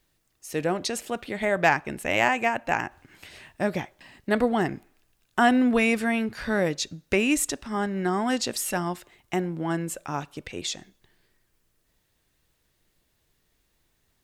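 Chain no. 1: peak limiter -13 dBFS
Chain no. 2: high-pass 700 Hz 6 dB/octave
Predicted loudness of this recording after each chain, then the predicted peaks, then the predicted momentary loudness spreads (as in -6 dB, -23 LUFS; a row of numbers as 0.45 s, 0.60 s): -27.0 LUFS, -29.0 LUFS; -13.0 dBFS, -6.0 dBFS; 13 LU, 14 LU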